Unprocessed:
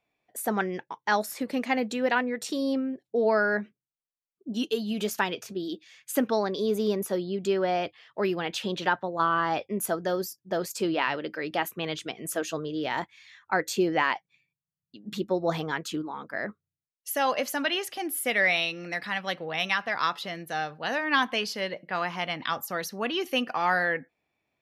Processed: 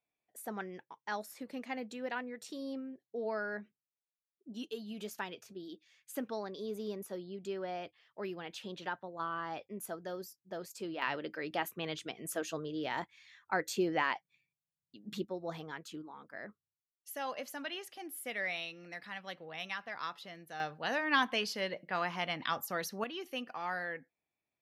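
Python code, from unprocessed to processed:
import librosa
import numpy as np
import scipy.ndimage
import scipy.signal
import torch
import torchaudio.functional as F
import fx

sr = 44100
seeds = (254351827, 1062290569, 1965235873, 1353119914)

y = fx.gain(x, sr, db=fx.steps((0.0, -13.5), (11.02, -7.0), (15.25, -13.5), (20.6, -5.0), (23.04, -13.0)))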